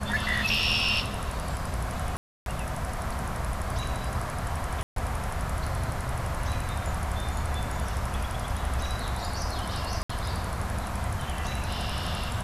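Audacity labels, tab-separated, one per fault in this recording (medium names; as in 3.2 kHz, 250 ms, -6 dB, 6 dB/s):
2.170000	2.460000	dropout 292 ms
4.830000	4.960000	dropout 133 ms
10.030000	10.100000	dropout 65 ms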